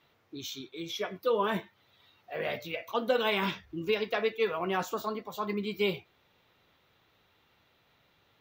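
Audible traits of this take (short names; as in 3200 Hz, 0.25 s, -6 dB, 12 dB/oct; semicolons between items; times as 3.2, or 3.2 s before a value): noise floor -69 dBFS; spectral tilt -2.5 dB/oct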